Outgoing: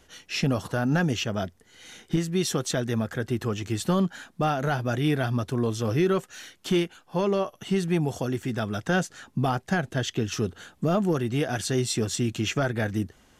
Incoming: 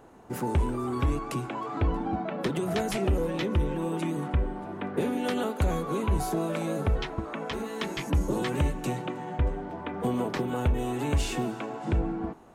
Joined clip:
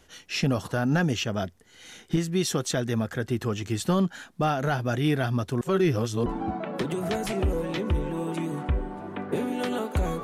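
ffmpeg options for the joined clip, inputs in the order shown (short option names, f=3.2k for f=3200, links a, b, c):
-filter_complex "[0:a]apad=whole_dur=10.23,atrim=end=10.23,asplit=2[a][b];[a]atrim=end=5.612[c];[b]atrim=start=5.608:end=6.262,asetpts=PTS-STARTPTS,areverse[d];[1:a]atrim=start=1.908:end=5.88[e];[c][d]acrossfade=d=0.004:c1=hsin:c2=hsin[f];[f][e]acrossfade=d=0.004:c1=hsin:c2=hsin"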